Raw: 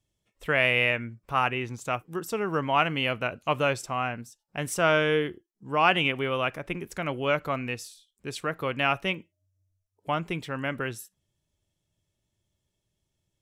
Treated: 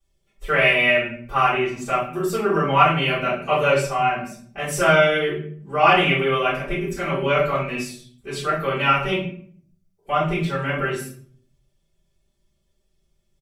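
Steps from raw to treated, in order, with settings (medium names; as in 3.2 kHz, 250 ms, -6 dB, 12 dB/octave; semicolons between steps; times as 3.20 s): comb 5.1 ms, depth 80%; simulated room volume 66 m³, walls mixed, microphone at 3.6 m; trim -9.5 dB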